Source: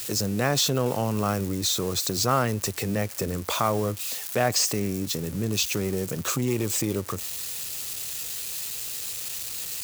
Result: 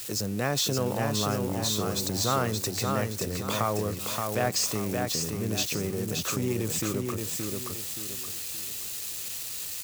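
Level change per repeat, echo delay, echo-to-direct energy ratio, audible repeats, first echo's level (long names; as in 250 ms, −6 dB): −9.0 dB, 574 ms, −3.5 dB, 4, −4.0 dB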